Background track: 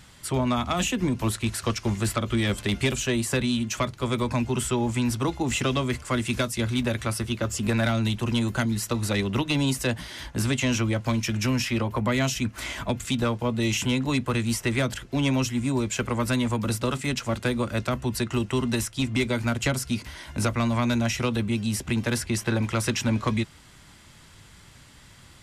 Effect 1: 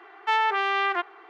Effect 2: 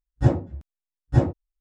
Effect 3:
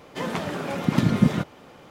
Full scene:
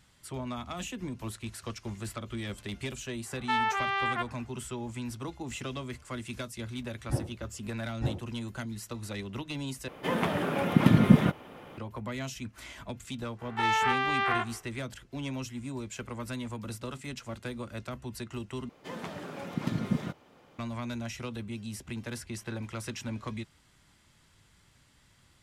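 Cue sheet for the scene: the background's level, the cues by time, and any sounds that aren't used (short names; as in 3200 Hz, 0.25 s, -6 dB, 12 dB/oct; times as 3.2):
background track -12.5 dB
3.21 add 1 -5 dB, fades 0.10 s + HPF 440 Hz
6.88 add 2 -12.5 dB
9.88 replace with 3 + band shelf 5700 Hz -8 dB 1.2 oct
13.36 add 1 -5 dB, fades 0.10 s + spectral dilation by 0.12 s
18.69 replace with 3 -11 dB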